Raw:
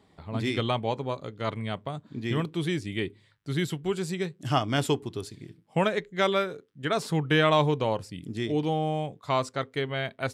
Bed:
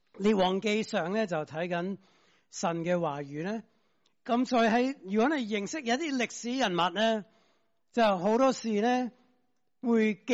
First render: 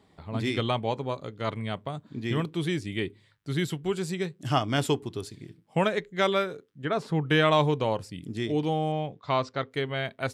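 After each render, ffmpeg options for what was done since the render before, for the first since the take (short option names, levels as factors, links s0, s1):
-filter_complex "[0:a]asettb=1/sr,asplit=3[s0][s1][s2];[s0]atrim=end=6.834[s3];[s1]atrim=start=6.83:end=7.26,asetpts=PTS-STARTPTS,afade=t=in:d=0.004:c=qsin,afade=t=out:st=0.426:d=0.004:c=qsin,lowpass=f=1800:p=1[s4];[s2]atrim=start=7.256[s5];[s3][s4]acrossfade=d=0.004:c1=hsin:c2=qsin[s6];[s6][s5]acrossfade=d=0.004:c1=qsin:c2=hsin,asettb=1/sr,asplit=3[s7][s8][s9];[s7]atrim=end=8.924[s10];[s8]atrim=start=8.92:end=9.71,asetpts=PTS-STARTPTS,afade=t=in:d=0.004:c=qsin,afade=t=out:st=0.786:d=0.004:c=qsin,lowpass=f=5300:w=0.5412,lowpass=f=5300:w=1.3066[s11];[s9]atrim=start=9.706[s12];[s10][s11]acrossfade=d=0.004:c1=hsin:c2=qsin[s13];[s13][s12]acrossfade=d=0.004:c1=qsin:c2=hsin"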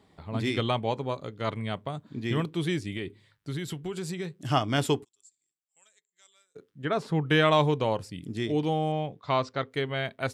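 -filter_complex "[0:a]asettb=1/sr,asplit=3[s0][s1][s2];[s0]atrim=end=2.964[s3];[s1]atrim=start=2.96:end=4.49,asetpts=PTS-STARTPTS,afade=t=in:d=0.004:c=qsin,afade=t=out:st=1.526:d=0.004:c=qsin,acompressor=threshold=0.0355:ratio=6:attack=3.2:release=140:knee=1:detection=peak[s4];[s2]atrim=start=4.486[s5];[s3][s4]acrossfade=d=0.004:c1=hsin:c2=qsin[s6];[s6][s5]acrossfade=d=0.004:c1=qsin:c2=hsin,asplit=3[s7][s8][s9];[s7]afade=t=out:st=5.03:d=0.02[s10];[s8]bandpass=f=7500:t=q:w=16,afade=t=in:st=5.03:d=0.02,afade=t=out:st=6.55:d=0.02[s11];[s9]afade=t=in:st=6.55:d=0.02[s12];[s10][s11][s12]amix=inputs=3:normalize=0"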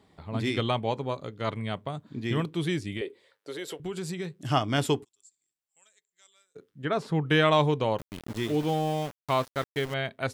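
-filter_complex "[0:a]asettb=1/sr,asplit=3[s0][s1][s2];[s0]atrim=end=3.014[s3];[s1]atrim=start=3.01:end=3.8,asetpts=PTS-STARTPTS,afade=t=in:d=0.004:c=qsin,afade=t=out:st=0.786:d=0.004:c=qsin,highpass=f=490:t=q:w=4.4[s4];[s2]atrim=start=3.796[s5];[s3][s4]acrossfade=d=0.004:c1=hsin:c2=qsin[s6];[s6][s5]acrossfade=d=0.004:c1=qsin:c2=hsin,asettb=1/sr,asplit=3[s7][s8][s9];[s7]atrim=end=7.984[s10];[s8]atrim=start=7.98:end=9.94,asetpts=PTS-STARTPTS,afade=t=in:d=0.004:c=qsin,afade=t=out:st=1.956:d=0.004:c=qsin,aeval=exprs='val(0)*gte(abs(val(0)),0.0158)':c=same[s11];[s9]atrim=start=9.936[s12];[s10][s11]acrossfade=d=0.004:c1=hsin:c2=qsin[s13];[s13][s12]acrossfade=d=0.004:c1=qsin:c2=hsin"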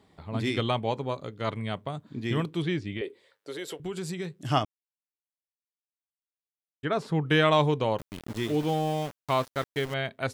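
-filter_complex "[0:a]asettb=1/sr,asplit=3[s0][s1][s2];[s0]atrim=end=2.624[s3];[s1]atrim=start=2.62:end=3.04,asetpts=PTS-STARTPTS,afade=t=in:d=0.004:c=qsin,afade=t=out:st=0.416:d=0.004:c=qsin,lowpass=3800[s4];[s2]atrim=start=3.036[s5];[s3][s4]acrossfade=d=0.004:c1=hsin:c2=qsin[s6];[s6][s5]acrossfade=d=0.004:c1=qsin:c2=hsin,asplit=3[s7][s8][s9];[s7]atrim=end=4.65,asetpts=PTS-STARTPTS,afade=t=out:st=4.646:d=0.004:c=hsin[s10];[s8]atrim=start=4.65:end=6.83,asetpts=PTS-STARTPTS,volume=0[s11];[s9]atrim=start=6.83,asetpts=PTS-STARTPTS,afade=t=in:d=0.004:c=hsin[s12];[s10][s11][s12]concat=n=3:v=0:a=1"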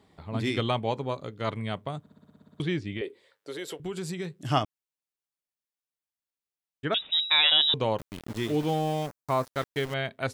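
-filter_complex "[0:a]asettb=1/sr,asplit=3[s0][s1][s2];[s0]atrim=end=6.944[s3];[s1]atrim=start=6.94:end=7.74,asetpts=PTS-STARTPTS,afade=t=in:d=0.004:c=qsin,afade=t=out:st=0.796:d=0.004:c=qsin,lowpass=f=3400:t=q:w=0.5098,lowpass=f=3400:t=q:w=0.6013,lowpass=f=3400:t=q:w=0.9,lowpass=f=3400:t=q:w=2.563,afreqshift=-4000[s4];[s2]atrim=start=7.736[s5];[s3][s4]acrossfade=d=0.004:c1=hsin:c2=qsin[s6];[s6][s5]acrossfade=d=0.004:c1=qsin:c2=hsin,asettb=1/sr,asplit=3[s7][s8][s9];[s7]atrim=end=9.064[s10];[s8]atrim=start=9.06:end=9.46,asetpts=PTS-STARTPTS,afade=t=in:d=0.004:c=qsin,afade=t=out:st=0.396:d=0.004:c=qsin,equalizer=f=3100:t=o:w=0.77:g=-13.5[s11];[s9]atrim=start=9.456[s12];[s10][s11]acrossfade=d=0.004:c1=hsin:c2=qsin[s13];[s13][s12]acrossfade=d=0.004:c1=qsin:c2=hsin,asplit=11[s14][s15][s16][s17][s18][s19][s20][s21][s22][s23][s24];[s14]atrim=end=2.062[s25];[s15]atrim=start=1.998:end=2.062[s26];[s16]atrim=start=1.998:end=2.062[s27];[s17]atrim=start=1.998:end=2.062[s28];[s18]atrim=start=1.998:end=2.062[s29];[s19]atrim=start=1.998:end=2.062[s30];[s20]atrim=start=1.998:end=2.062[s31];[s21]atrim=start=1.998:end=2.062[s32];[s22]atrim=start=1.998:end=2.062[s33];[s23]atrim=start=1.998:end=2.062[s34];[s24]atrim=start=2.598[s35];[s25][s26]acrossfade=d=0.004:c1=hsin:c2=hsin[s36];[s36][s27]acrossfade=d=0.004:c1=hsin:c2=hsin[s37];[s37][s28]acrossfade=d=0.004:c1=hsin:c2=hsin[s38];[s38][s29]acrossfade=d=0.004:c1=hsin:c2=hsin[s39];[s39][s30]acrossfade=d=0.004:c1=hsin:c2=hsin[s40];[s40][s31]acrossfade=d=0.004:c1=hsin:c2=hsin[s41];[s41][s32]acrossfade=d=0.004:c1=hsin:c2=hsin[s42];[s42][s33]acrossfade=d=0.004:c1=hsin:c2=hsin[s43];[s43][s34]acrossfade=d=0.004:c1=hsin:c2=hsin[s44];[s44][s35]acrossfade=d=0.004:c1=hsin:c2=hsin"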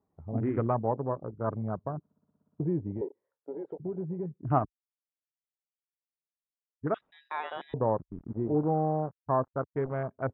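-af "afwtdn=0.0224,lowpass=f=1300:w=0.5412,lowpass=f=1300:w=1.3066"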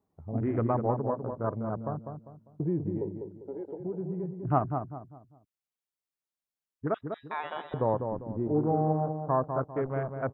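-filter_complex "[0:a]asplit=2[s0][s1];[s1]adelay=199,lowpass=f=1200:p=1,volume=0.531,asplit=2[s2][s3];[s3]adelay=199,lowpass=f=1200:p=1,volume=0.37,asplit=2[s4][s5];[s5]adelay=199,lowpass=f=1200:p=1,volume=0.37,asplit=2[s6][s7];[s7]adelay=199,lowpass=f=1200:p=1,volume=0.37[s8];[s0][s2][s4][s6][s8]amix=inputs=5:normalize=0"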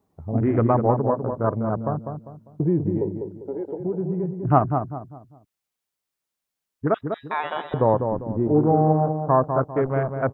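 -af "volume=2.66"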